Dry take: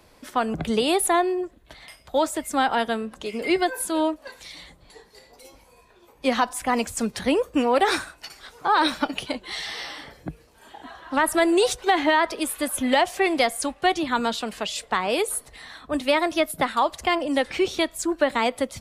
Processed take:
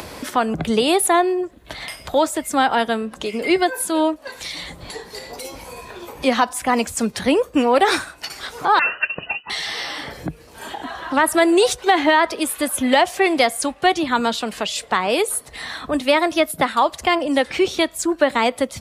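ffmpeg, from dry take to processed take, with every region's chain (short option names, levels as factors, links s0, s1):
-filter_complex "[0:a]asettb=1/sr,asplit=3[s0][s1][s2];[s0]atrim=end=8.794[s3];[s1]atrim=start=8.79:end=9.5,asetpts=PTS-STARTPTS,afade=t=in:d=0.004:c=qsin,afade=t=out:st=0.706:d=0.004:c=qsin,agate=range=0.0224:threshold=0.0126:ratio=3:release=100:detection=peak,asuperstop=centerf=750:order=8:qfactor=1.7,lowpass=f=2600:t=q:w=0.5098,lowpass=f=2600:t=q:w=0.6013,lowpass=f=2600:t=q:w=0.9,lowpass=f=2600:t=q:w=2.563,afreqshift=-3000[s4];[s2]atrim=start=9.496[s5];[s3][s4]acrossfade=d=0.004:c1=hsin:c2=qsin[s6];[s6][s5]acrossfade=d=0.004:c1=qsin:c2=hsin,highpass=57,acompressor=mode=upward:threshold=0.0501:ratio=2.5,volume=1.68"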